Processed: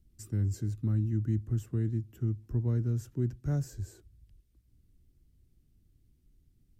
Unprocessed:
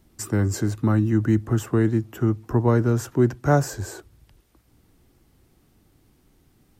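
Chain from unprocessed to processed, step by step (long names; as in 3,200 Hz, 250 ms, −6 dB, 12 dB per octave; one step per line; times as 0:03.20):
guitar amp tone stack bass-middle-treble 10-0-1
level +4.5 dB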